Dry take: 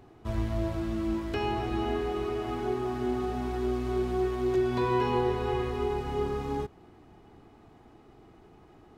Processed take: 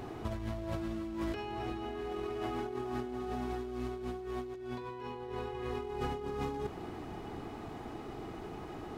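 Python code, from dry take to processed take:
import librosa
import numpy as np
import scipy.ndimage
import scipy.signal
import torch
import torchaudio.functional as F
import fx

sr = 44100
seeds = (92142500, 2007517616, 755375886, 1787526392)

y = fx.low_shelf(x, sr, hz=160.0, db=-4.0)
y = fx.over_compress(y, sr, threshold_db=-41.0, ratio=-1.0)
y = y * librosa.db_to_amplitude(2.5)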